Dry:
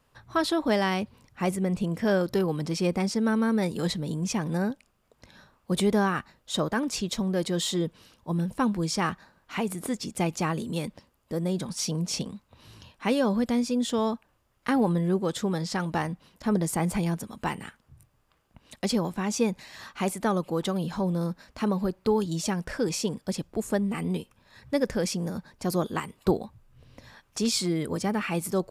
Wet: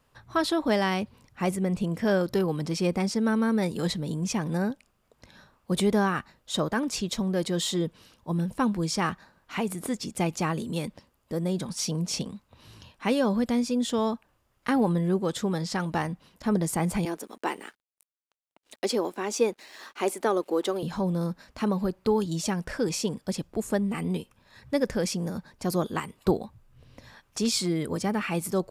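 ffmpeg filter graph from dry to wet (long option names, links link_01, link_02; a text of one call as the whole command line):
ffmpeg -i in.wav -filter_complex "[0:a]asettb=1/sr,asplit=3[link_01][link_02][link_03];[link_01]atrim=end=17.054[link_04];[link_02]atrim=start=17.05:end=20.83,asetpts=PTS-STARTPTS,afade=type=in:duration=0.004:curve=qsin,afade=type=out:start_time=3.776:duration=0.004:curve=qsin,highpass=frequency=280:width=0.5412,highpass=frequency=280:width=1.3066,equalizer=frequency=380:width_type=o:width=0.81:gain=6,aeval=exprs='sgn(val(0))*max(abs(val(0))-0.00126,0)':channel_layout=same[link_05];[link_03]atrim=start=20.826[link_06];[link_04][link_05]acrossfade=duration=0.004:curve1=hsin:curve2=qsin[link_07];[link_07][link_06]acrossfade=duration=0.004:curve1=qsin:curve2=hsin" out.wav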